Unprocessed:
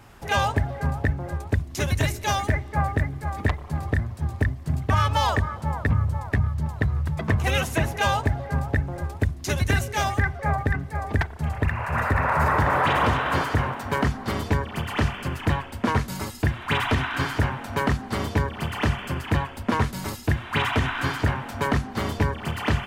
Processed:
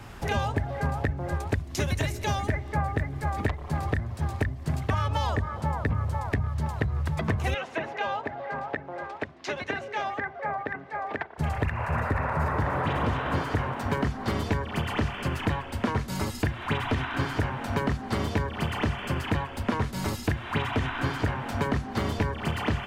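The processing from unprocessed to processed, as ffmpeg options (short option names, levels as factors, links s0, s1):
-filter_complex "[0:a]asettb=1/sr,asplit=3[s0][s1][s2];[s0]atrim=end=7.544[s3];[s1]atrim=start=7.54:end=11.38,asetpts=PTS-STARTPTS,afade=t=in:d=0.004:c=qsin,afade=t=out:st=3.836:d=0.004:c=qsin,highpass=570,lowpass=3000[s4];[s2]atrim=start=11.376[s5];[s3][s4]acrossfade=d=0.004:c1=hsin:c2=qsin[s6];[s6][s5]acrossfade=d=0.004:c1=qsin:c2=hsin,highshelf=f=7700:g=-7.5,acrossover=split=370|770[s7][s8][s9];[s7]acompressor=threshold=0.02:ratio=4[s10];[s8]acompressor=threshold=0.01:ratio=4[s11];[s9]acompressor=threshold=0.01:ratio=4[s12];[s10][s11][s12]amix=inputs=3:normalize=0,equalizer=f=770:t=o:w=2.9:g=-2.5,volume=2.24"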